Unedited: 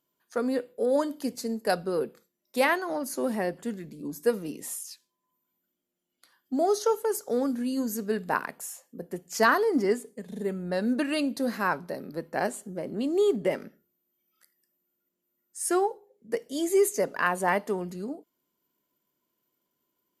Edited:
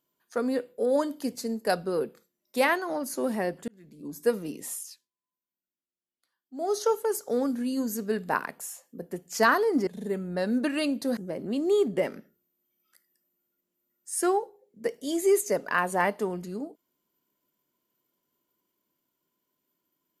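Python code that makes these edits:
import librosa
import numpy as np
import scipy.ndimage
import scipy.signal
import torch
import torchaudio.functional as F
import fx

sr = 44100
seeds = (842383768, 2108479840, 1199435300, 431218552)

y = fx.edit(x, sr, fx.fade_in_span(start_s=3.68, length_s=0.57),
    fx.fade_down_up(start_s=4.82, length_s=1.98, db=-16.5, fade_s=0.27),
    fx.cut(start_s=9.87, length_s=0.35),
    fx.cut(start_s=11.52, length_s=1.13), tone=tone)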